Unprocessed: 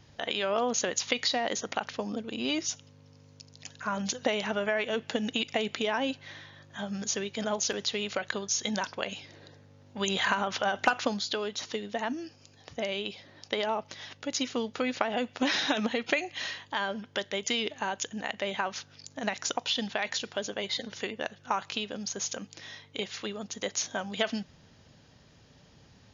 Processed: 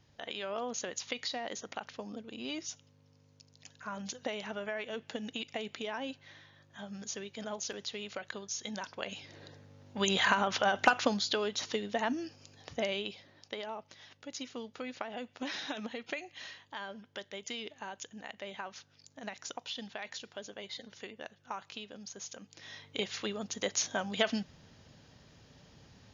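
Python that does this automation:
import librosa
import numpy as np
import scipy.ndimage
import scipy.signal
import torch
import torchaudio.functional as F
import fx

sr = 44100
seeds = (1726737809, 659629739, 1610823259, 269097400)

y = fx.gain(x, sr, db=fx.line((8.8, -9.0), (9.41, 0.0), (12.79, 0.0), (13.64, -11.0), (22.39, -11.0), (22.84, -0.5)))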